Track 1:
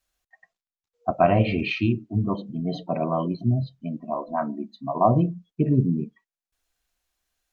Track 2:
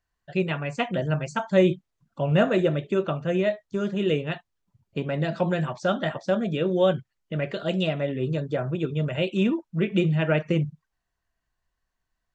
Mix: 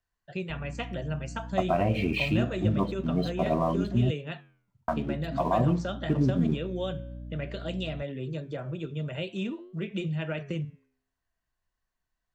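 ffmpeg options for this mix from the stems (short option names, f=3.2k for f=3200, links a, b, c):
-filter_complex "[0:a]alimiter=limit=-16dB:level=0:latency=1:release=184,aeval=exprs='sgn(val(0))*max(abs(val(0))-0.00335,0)':c=same,aeval=exprs='val(0)+0.0112*(sin(2*PI*60*n/s)+sin(2*PI*2*60*n/s)/2+sin(2*PI*3*60*n/s)/3+sin(2*PI*4*60*n/s)/4+sin(2*PI*5*60*n/s)/5)':c=same,adelay=500,volume=0.5dB,asplit=3[a][b][c];[a]atrim=end=4.11,asetpts=PTS-STARTPTS,afade=t=out:st=4.106:d=0.004:c=hsin[d];[b]atrim=start=4.11:end=4.88,asetpts=PTS-STARTPTS,volume=0[e];[c]atrim=start=4.88,asetpts=PTS-STARTPTS,afade=t=in:d=0.004:c=hsin[f];[d][e][f]concat=n=3:v=0:a=1[g];[1:a]flanger=delay=8.5:depth=5:regen=-87:speed=0.5:shape=sinusoidal,acrossover=split=120|3000[h][i][j];[i]acompressor=threshold=-37dB:ratio=2[k];[h][k][j]amix=inputs=3:normalize=0,volume=0.5dB[l];[g][l]amix=inputs=2:normalize=0"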